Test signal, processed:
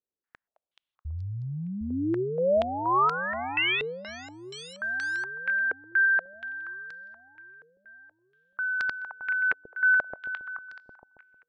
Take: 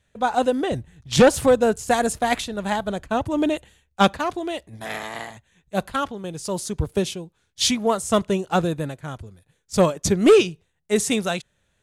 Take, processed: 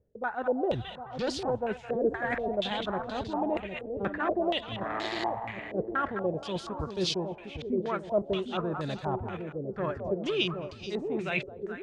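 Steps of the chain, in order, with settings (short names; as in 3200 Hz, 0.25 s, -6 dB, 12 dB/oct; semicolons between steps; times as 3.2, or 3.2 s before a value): reverse; compressor 10:1, threshold -32 dBFS; reverse; dynamic EQ 370 Hz, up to +6 dB, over -53 dBFS, Q 6.8; split-band echo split 670 Hz, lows 0.757 s, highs 0.214 s, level -5.5 dB; stepped low-pass 4.2 Hz 450–4600 Hz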